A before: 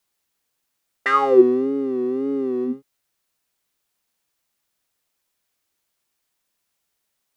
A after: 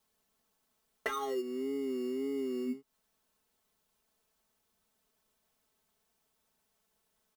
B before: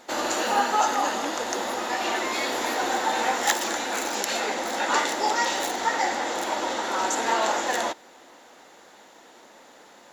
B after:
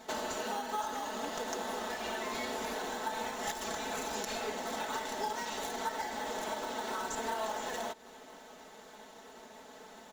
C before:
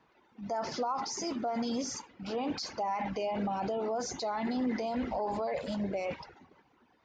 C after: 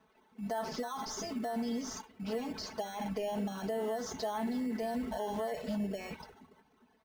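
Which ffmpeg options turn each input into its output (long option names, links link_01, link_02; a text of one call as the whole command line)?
ffmpeg -i in.wav -filter_complex "[0:a]asplit=2[link_01][link_02];[link_02]acrusher=samples=18:mix=1:aa=0.000001,volume=-5.5dB[link_03];[link_01][link_03]amix=inputs=2:normalize=0,equalizer=frequency=93:width_type=o:width=0.3:gain=8.5,acompressor=threshold=-30dB:ratio=8,aecho=1:1:4.6:0.85,volume=-6dB" out.wav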